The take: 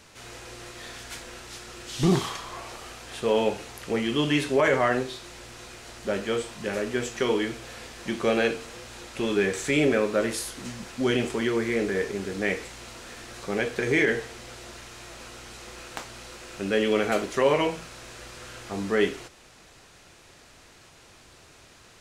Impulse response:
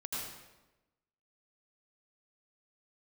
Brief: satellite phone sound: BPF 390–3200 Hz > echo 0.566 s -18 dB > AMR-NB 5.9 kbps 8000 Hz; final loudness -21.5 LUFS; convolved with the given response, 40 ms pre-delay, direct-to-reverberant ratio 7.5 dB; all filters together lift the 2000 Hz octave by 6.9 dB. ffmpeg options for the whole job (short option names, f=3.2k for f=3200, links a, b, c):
-filter_complex "[0:a]equalizer=f=2k:t=o:g=9,asplit=2[a][b];[1:a]atrim=start_sample=2205,adelay=40[c];[b][c]afir=irnorm=-1:irlink=0,volume=-9.5dB[d];[a][d]amix=inputs=2:normalize=0,highpass=390,lowpass=3.2k,aecho=1:1:566:0.126,volume=5.5dB" -ar 8000 -c:a libopencore_amrnb -b:a 5900